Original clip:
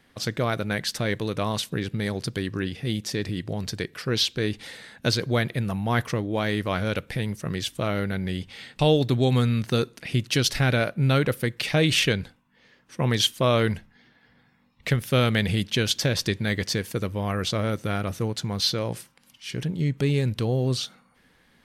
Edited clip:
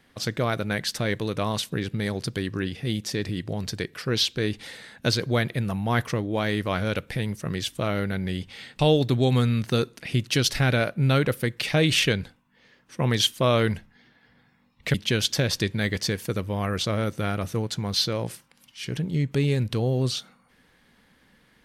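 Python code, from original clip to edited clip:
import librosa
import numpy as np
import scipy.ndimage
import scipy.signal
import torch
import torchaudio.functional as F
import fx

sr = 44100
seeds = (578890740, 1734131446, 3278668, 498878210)

y = fx.edit(x, sr, fx.cut(start_s=14.94, length_s=0.66), tone=tone)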